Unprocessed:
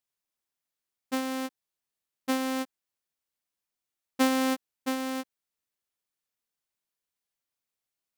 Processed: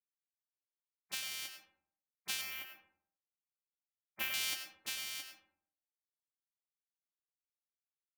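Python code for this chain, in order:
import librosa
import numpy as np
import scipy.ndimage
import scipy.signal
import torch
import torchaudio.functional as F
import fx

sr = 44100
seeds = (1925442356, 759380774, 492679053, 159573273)

y = fx.spec_gate(x, sr, threshold_db=-20, keep='weak')
y = fx.band_shelf(y, sr, hz=6000.0, db=-14.5, octaves=1.7, at=(2.41, 4.34))
y = fx.rev_freeverb(y, sr, rt60_s=0.65, hf_ratio=0.45, predelay_ms=60, drr_db=6.0)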